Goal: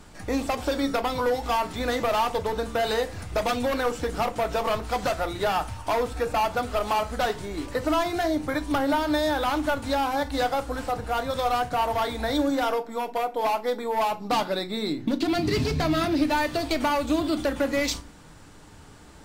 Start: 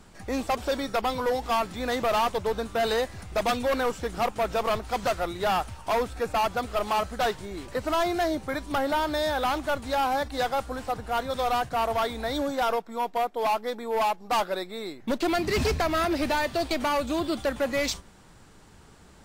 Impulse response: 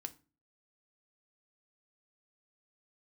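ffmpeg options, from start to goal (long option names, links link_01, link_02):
-filter_complex "[0:a]asettb=1/sr,asplit=3[link_01][link_02][link_03];[link_01]atrim=end=14.114[link_04];[link_02]atrim=start=14.11:end=16.24,asetpts=PTS-STARTPTS,afade=type=in:duration=0.004:curve=qsin,afade=type=out:start_time=2.126:duration=0.004:curve=qsin,equalizer=frequency=125:width_type=o:width=1:gain=11,equalizer=frequency=250:width_type=o:width=1:gain=7,equalizer=frequency=4000:width_type=o:width=1:gain=6[link_05];[link_03]atrim=start=16.236[link_06];[link_04][link_05]acrossfade=duration=0.004:curve1=hsin:curve2=qsin[link_07];[link_07][link_06]acrossfade=duration=0.004:curve1=qsin:curve2=hsin,acompressor=threshold=-26dB:ratio=10[link_08];[1:a]atrim=start_sample=2205[link_09];[link_08][link_09]afir=irnorm=-1:irlink=0,volume=7.5dB"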